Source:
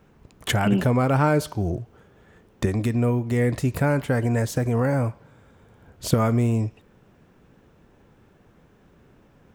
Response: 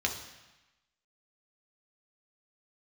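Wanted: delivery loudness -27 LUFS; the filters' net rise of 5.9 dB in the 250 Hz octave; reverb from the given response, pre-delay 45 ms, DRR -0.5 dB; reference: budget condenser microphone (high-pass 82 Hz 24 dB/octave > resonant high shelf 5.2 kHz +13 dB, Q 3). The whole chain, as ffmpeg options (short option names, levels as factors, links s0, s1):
-filter_complex "[0:a]equalizer=f=250:t=o:g=7,asplit=2[s0][s1];[1:a]atrim=start_sample=2205,adelay=45[s2];[s1][s2]afir=irnorm=-1:irlink=0,volume=0.473[s3];[s0][s3]amix=inputs=2:normalize=0,highpass=f=82:w=0.5412,highpass=f=82:w=1.3066,highshelf=f=5200:t=q:w=3:g=13,volume=0.282"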